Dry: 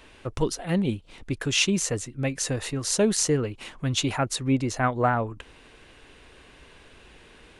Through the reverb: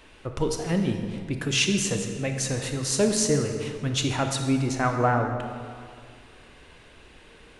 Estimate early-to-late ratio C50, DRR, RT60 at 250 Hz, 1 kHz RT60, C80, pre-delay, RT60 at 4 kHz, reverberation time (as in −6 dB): 5.5 dB, 4.5 dB, 2.3 s, 2.1 s, 6.5 dB, 23 ms, 1.5 s, 2.1 s